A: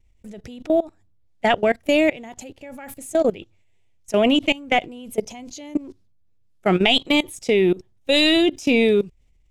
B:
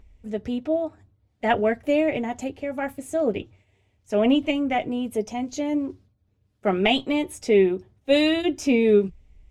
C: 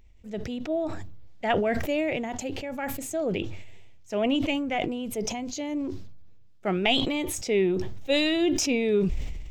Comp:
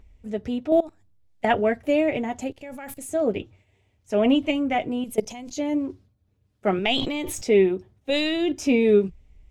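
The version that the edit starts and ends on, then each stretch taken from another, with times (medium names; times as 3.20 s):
B
0.72–1.45 s: from A
2.51–3.09 s: from A
5.04–5.57 s: from A
6.79–7.45 s: from C
8.10–8.52 s: from C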